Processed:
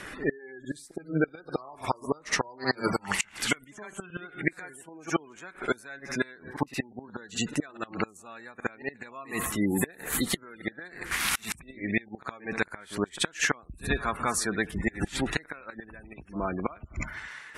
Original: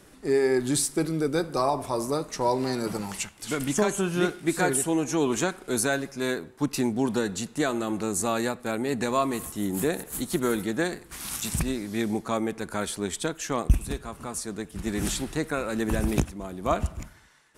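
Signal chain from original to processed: flipped gate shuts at -17 dBFS, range -30 dB; spectral gate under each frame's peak -25 dB strong; bell 1900 Hz +15 dB 1.8 oct; pre-echo 66 ms -18 dB; in parallel at -0.5 dB: compressor, threshold -38 dBFS, peak gain reduction 16.5 dB

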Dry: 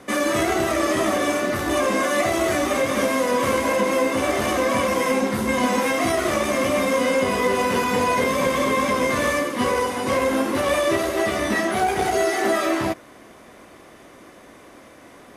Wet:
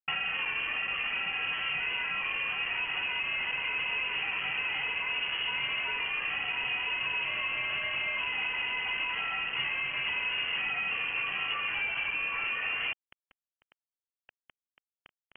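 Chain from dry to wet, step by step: low shelf 170 Hz -8.5 dB; limiter -14 dBFS, peak gain reduction 5 dB; compressor 16:1, threshold -31 dBFS, peak gain reduction 13 dB; requantised 6-bit, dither none; air absorption 400 m; inverted band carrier 3100 Hz; gain +3.5 dB

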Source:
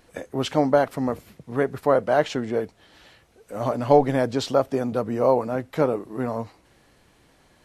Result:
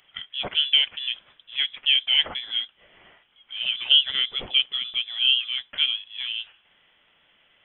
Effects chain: HPF 420 Hz 12 dB/oct; inverted band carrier 3700 Hz

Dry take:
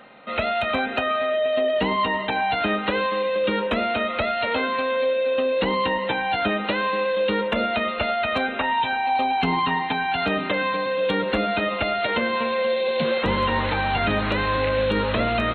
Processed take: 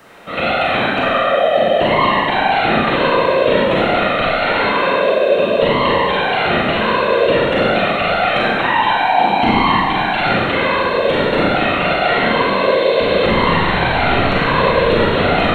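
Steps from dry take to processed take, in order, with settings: whisperiser; Schroeder reverb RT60 1.3 s, combs from 32 ms, DRR -5 dB; buzz 400 Hz, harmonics 40, -57 dBFS -3 dB/oct; gain +2 dB

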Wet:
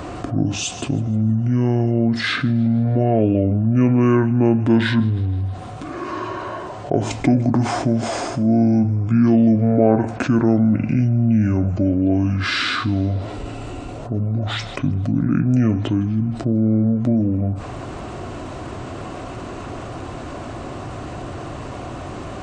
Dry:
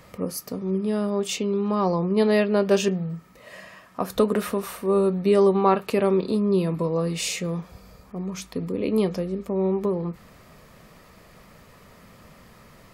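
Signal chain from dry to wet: HPF 640 Hz 6 dB/oct; tilt -3 dB/oct; on a send: thin delay 91 ms, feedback 54%, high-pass 3900 Hz, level -19 dB; on the sum: speed mistake 78 rpm record played at 45 rpm; fast leveller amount 50%; gain +4 dB

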